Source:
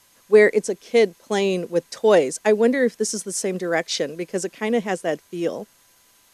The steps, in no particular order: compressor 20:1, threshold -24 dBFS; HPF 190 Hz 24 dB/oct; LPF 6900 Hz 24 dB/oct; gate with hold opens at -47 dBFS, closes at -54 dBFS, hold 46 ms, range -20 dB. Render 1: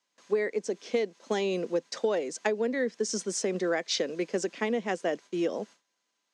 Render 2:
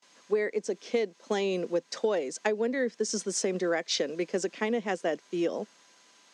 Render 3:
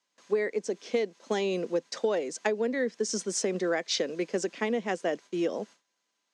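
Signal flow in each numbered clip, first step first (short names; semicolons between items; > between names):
compressor > LPF > gate with hold > HPF; gate with hold > LPF > compressor > HPF; LPF > compressor > gate with hold > HPF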